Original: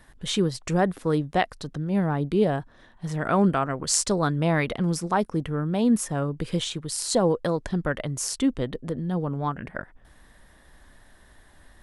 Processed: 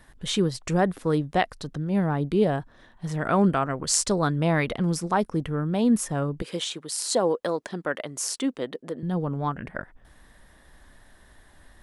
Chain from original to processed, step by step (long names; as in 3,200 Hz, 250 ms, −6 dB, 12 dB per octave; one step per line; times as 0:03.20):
0:06.42–0:09.03: high-pass filter 300 Hz 12 dB per octave